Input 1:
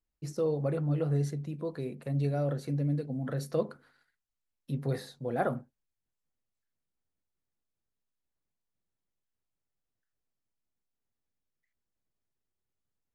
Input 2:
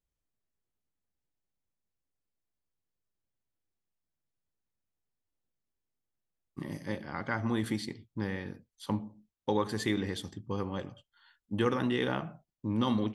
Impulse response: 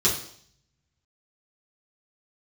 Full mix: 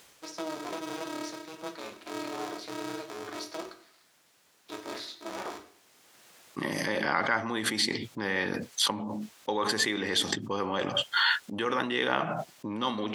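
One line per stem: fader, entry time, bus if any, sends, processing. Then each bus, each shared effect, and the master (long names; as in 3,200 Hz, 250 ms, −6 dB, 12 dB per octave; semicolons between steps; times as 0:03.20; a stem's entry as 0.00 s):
−4.5 dB, 0.00 s, send −15.5 dB, flat-topped bell 3,300 Hz +9.5 dB; brickwall limiter −24 dBFS, peak gain reduction 9 dB; ring modulator with a square carrier 160 Hz
0.0 dB, 0.00 s, no send, envelope flattener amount 100%; automatic ducking −9 dB, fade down 0.30 s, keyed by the first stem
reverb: on, RT60 0.60 s, pre-delay 3 ms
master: meter weighting curve A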